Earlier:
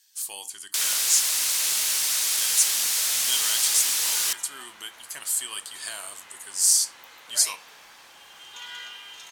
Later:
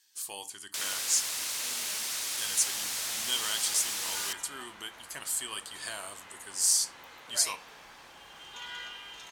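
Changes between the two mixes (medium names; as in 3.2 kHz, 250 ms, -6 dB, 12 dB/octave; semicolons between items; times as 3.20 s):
first sound -4.5 dB; master: add tilt EQ -2 dB/octave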